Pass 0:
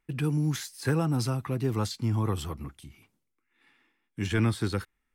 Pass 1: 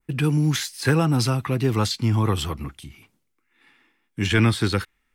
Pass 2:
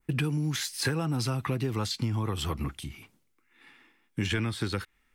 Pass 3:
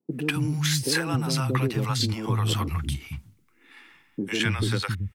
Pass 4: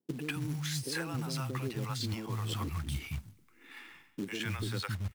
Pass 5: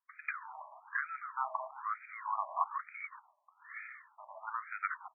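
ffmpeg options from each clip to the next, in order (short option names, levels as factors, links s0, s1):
-af "adynamicequalizer=threshold=0.00316:dfrequency=2900:dqfactor=0.73:tfrequency=2900:tqfactor=0.73:attack=5:release=100:ratio=0.375:range=3:mode=boostabove:tftype=bell,volume=2.11"
-af "acompressor=threshold=0.0447:ratio=12,volume=1.19"
-filter_complex "[0:a]acrossover=split=190|580[s0][s1][s2];[s2]adelay=100[s3];[s0]adelay=270[s4];[s4][s1][s3]amix=inputs=3:normalize=0,volume=2"
-af "areverse,acompressor=threshold=0.0251:ratio=16,areverse,acrusher=bits=4:mode=log:mix=0:aa=0.000001"
-af "highpass=100,equalizer=f=150:t=q:w=4:g=-9,equalizer=f=240:t=q:w=4:g=-5,equalizer=f=390:t=q:w=4:g=5,equalizer=f=590:t=q:w=4:g=8,equalizer=f=980:t=q:w=4:g=6,equalizer=f=1600:t=q:w=4:g=-5,lowpass=f=2500:w=0.5412,lowpass=f=2500:w=1.3066,acrusher=bits=5:mode=log:mix=0:aa=0.000001,afftfilt=real='re*between(b*sr/1024,810*pow(1800/810,0.5+0.5*sin(2*PI*1.1*pts/sr))/1.41,810*pow(1800/810,0.5+0.5*sin(2*PI*1.1*pts/sr))*1.41)':imag='im*between(b*sr/1024,810*pow(1800/810,0.5+0.5*sin(2*PI*1.1*pts/sr))/1.41,810*pow(1800/810,0.5+0.5*sin(2*PI*1.1*pts/sr))*1.41)':win_size=1024:overlap=0.75,volume=2.51"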